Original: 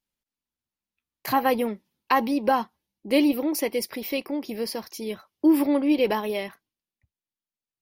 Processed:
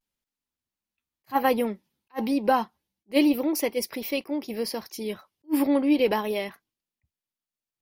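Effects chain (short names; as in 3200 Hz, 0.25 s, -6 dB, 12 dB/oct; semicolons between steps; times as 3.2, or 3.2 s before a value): vibrato 0.32 Hz 32 cents; attack slew limiter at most 520 dB/s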